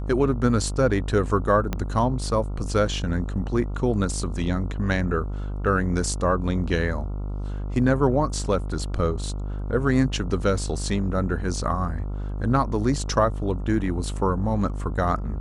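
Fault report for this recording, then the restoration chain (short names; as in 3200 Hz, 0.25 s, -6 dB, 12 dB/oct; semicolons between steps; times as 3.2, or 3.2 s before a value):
buzz 50 Hz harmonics 28 -29 dBFS
1.73 pop -12 dBFS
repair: de-click; de-hum 50 Hz, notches 28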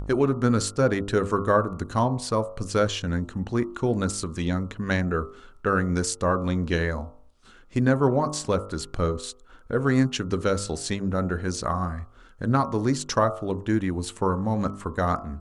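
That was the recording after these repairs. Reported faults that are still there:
1.73 pop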